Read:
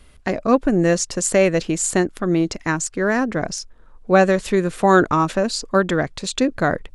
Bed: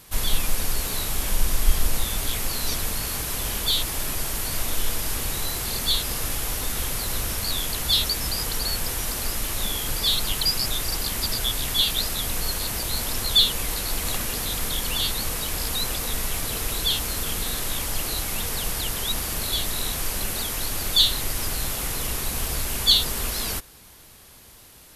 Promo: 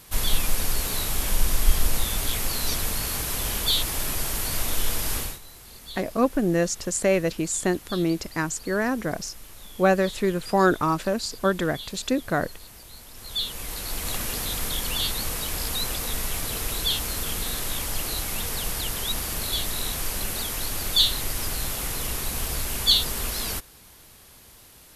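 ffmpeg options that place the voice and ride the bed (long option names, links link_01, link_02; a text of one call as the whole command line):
ffmpeg -i stem1.wav -i stem2.wav -filter_complex "[0:a]adelay=5700,volume=-5.5dB[link_01];[1:a]volume=16.5dB,afade=type=out:start_time=5.17:duration=0.22:silence=0.125893,afade=type=in:start_time=13.13:duration=1.14:silence=0.149624[link_02];[link_01][link_02]amix=inputs=2:normalize=0" out.wav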